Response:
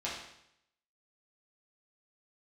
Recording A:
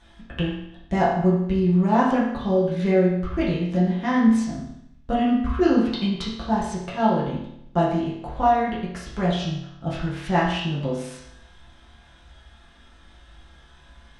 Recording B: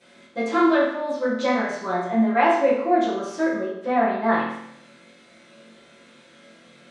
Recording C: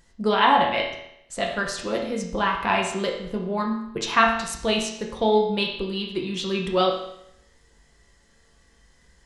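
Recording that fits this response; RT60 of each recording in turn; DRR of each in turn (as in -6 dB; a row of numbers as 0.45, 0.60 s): A; 0.75, 0.75, 0.75 s; -7.5, -15.5, -1.0 dB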